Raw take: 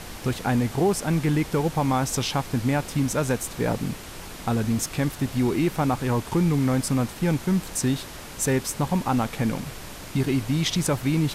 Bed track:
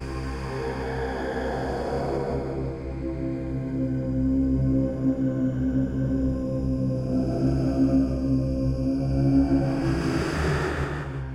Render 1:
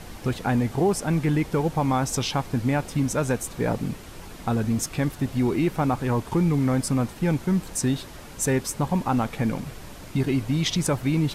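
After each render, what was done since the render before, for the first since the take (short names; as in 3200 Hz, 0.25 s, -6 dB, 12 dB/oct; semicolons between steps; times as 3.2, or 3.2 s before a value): denoiser 6 dB, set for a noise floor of -39 dBFS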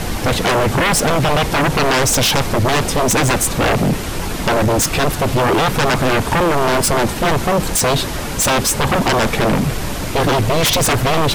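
sine folder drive 15 dB, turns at -11 dBFS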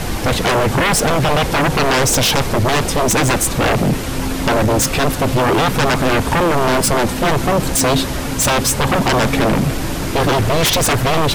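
add bed track -2 dB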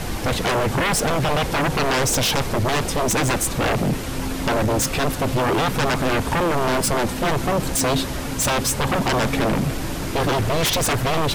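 gain -5.5 dB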